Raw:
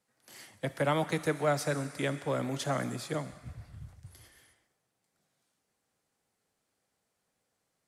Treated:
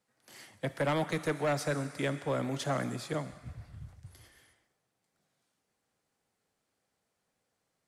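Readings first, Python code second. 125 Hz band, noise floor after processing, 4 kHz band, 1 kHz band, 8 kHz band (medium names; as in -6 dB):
-0.5 dB, -82 dBFS, -1.0 dB, -1.5 dB, -2.5 dB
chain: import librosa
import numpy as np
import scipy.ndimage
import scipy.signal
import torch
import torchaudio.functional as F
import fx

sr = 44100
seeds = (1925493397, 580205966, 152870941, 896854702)

y = np.clip(10.0 ** (24.5 / 20.0) * x, -1.0, 1.0) / 10.0 ** (24.5 / 20.0)
y = fx.high_shelf(y, sr, hz=7700.0, db=-5.0)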